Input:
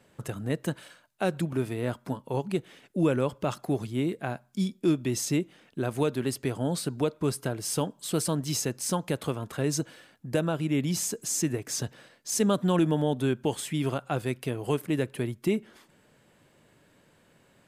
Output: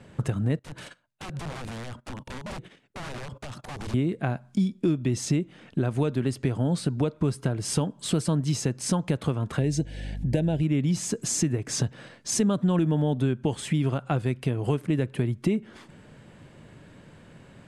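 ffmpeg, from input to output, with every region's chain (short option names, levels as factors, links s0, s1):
-filter_complex "[0:a]asettb=1/sr,asplit=3[s0][s1][s2];[s0]atrim=end=0.594[s3];[s1]atrim=start=0.59:end=3.94,asetpts=PTS-STARTPTS,afade=t=in:d=0.004:c=qsin,afade=t=out:st=3.346:d=0.004:c=qsin,agate=range=0.112:threshold=0.00282:ratio=16:release=100:detection=peak,acompressor=threshold=0.0112:ratio=12:attack=3.2:release=140:knee=1:detection=peak,aeval=exprs='(mod(119*val(0)+1,2)-1)/119':c=same[s4];[s2]atrim=start=3.936[s5];[s3][s4]acrossfade=d=0.004:c1=hsin:c2=qsin[s6];[s6][s5]acrossfade=d=0.004:c1=qsin:c2=hsin,asettb=1/sr,asplit=3[s7][s8][s9];[s7]atrim=end=9.594[s10];[s8]atrim=start=9.59:end=10.63,asetpts=PTS-STARTPTS,afade=t=in:d=0.004:c=qsin,afade=t=out:st=1.036:d=0.004:c=qsin,asuperstop=centerf=1200:order=4:qfactor=1.4,acompressor=mode=upward:threshold=0.00631:ratio=2.5:attack=3.2:release=140:knee=2.83:detection=peak,aeval=exprs='val(0)+0.00398*(sin(2*PI*50*n/s)+sin(2*PI*2*50*n/s)/2+sin(2*PI*3*50*n/s)/3+sin(2*PI*4*50*n/s)/4+sin(2*PI*5*50*n/s)/5)':c=same[s11];[s9]atrim=start=10.626[s12];[s10][s11]acrossfade=d=0.004:c1=hsin:c2=qsin[s13];[s13][s12]acrossfade=d=0.004:c1=qsin:c2=hsin,lowpass=f=10000:w=0.5412,lowpass=f=10000:w=1.3066,bass=f=250:g=8,treble=f=4000:g=-5,acompressor=threshold=0.0224:ratio=3,volume=2.66"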